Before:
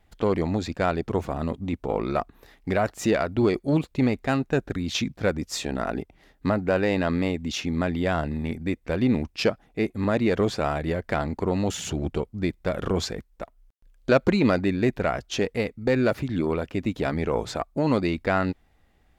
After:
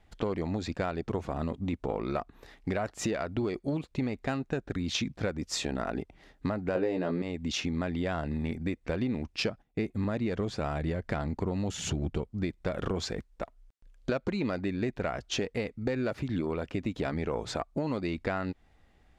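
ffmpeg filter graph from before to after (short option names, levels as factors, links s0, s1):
-filter_complex "[0:a]asettb=1/sr,asplit=3[s0][s1][s2];[s0]atrim=end=6.754[s3];[s1]atrim=start=6.75:end=7.22,asetpts=PTS-STARTPTS,afade=t=in:d=0.004:c=qsin,afade=t=out:st=0.466:d=0.004:c=qsin,equalizer=f=400:w=0.71:g=11.5,asplit=2[s4][s5];[s5]adelay=17,volume=0.631[s6];[s4][s6]amix=inputs=2:normalize=0,atrim=end_sample=20727[s7];[s2]atrim=start=7.216[s8];[s3][s7]acrossfade=d=0.004:c1=hsin:c2=qsin[s9];[s9][s8]acrossfade=d=0.004:c1=qsin:c2=hsin,asettb=1/sr,asplit=3[s10][s11][s12];[s10]atrim=end=9.464[s13];[s11]atrim=start=9.46:end=12.28,asetpts=PTS-STARTPTS,afade=t=in:d=0.004:c=qsin,afade=t=out:st=2.816:d=0.004:c=qsin,agate=range=0.126:threshold=0.002:ratio=16:release=100:detection=peak,bass=f=250:g=5,treble=f=4000:g=1[s14];[s12]atrim=start=12.276[s15];[s13][s14]acrossfade=d=0.004:c1=hsin:c2=qsin[s16];[s16][s15]acrossfade=d=0.004:c1=qsin:c2=hsin,lowpass=8900,acompressor=threshold=0.0398:ratio=6"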